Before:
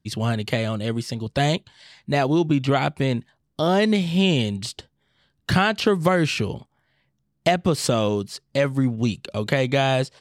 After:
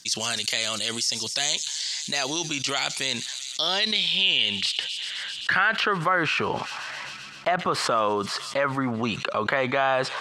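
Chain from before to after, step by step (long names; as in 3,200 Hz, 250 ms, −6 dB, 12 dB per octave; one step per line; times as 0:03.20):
band-pass filter sweep 6,200 Hz → 1,200 Hz, 0:02.99–0:06.23
delay with a high-pass on its return 130 ms, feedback 72%, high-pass 5,100 Hz, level −18 dB
envelope flattener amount 70%
level +3 dB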